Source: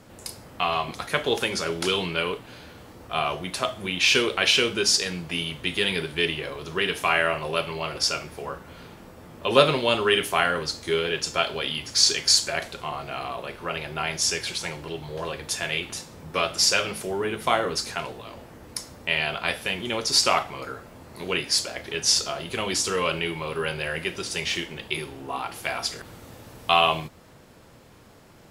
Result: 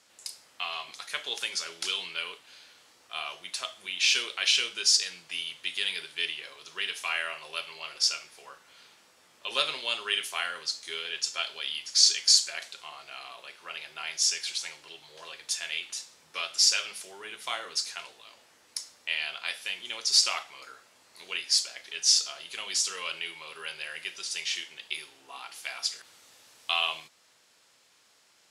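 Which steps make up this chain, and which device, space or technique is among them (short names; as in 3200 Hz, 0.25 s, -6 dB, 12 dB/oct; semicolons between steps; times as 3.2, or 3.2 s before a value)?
piezo pickup straight into a mixer (LPF 6300 Hz 12 dB/oct; differentiator); gain +3.5 dB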